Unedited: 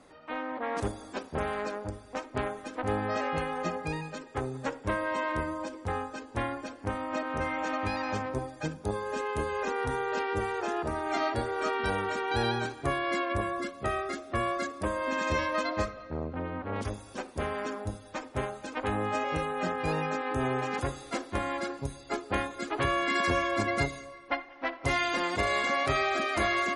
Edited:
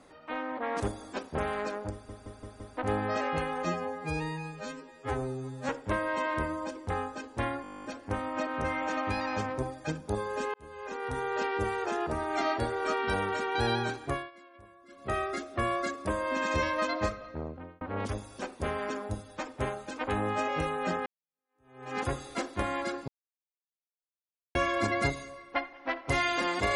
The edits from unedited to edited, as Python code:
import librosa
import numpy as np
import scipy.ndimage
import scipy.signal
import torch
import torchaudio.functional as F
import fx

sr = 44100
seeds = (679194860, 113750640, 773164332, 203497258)

y = fx.edit(x, sr, fx.stutter_over(start_s=1.92, slice_s=0.17, count=5),
    fx.stretch_span(start_s=3.65, length_s=1.02, factor=2.0),
    fx.stutter(start_s=6.6, slice_s=0.02, count=12),
    fx.fade_in_span(start_s=9.3, length_s=0.83),
    fx.fade_down_up(start_s=12.81, length_s=1.09, db=-24.0, fade_s=0.26),
    fx.fade_out_span(start_s=16.04, length_s=0.53),
    fx.fade_in_span(start_s=19.82, length_s=0.9, curve='exp'),
    fx.silence(start_s=21.84, length_s=1.47), tone=tone)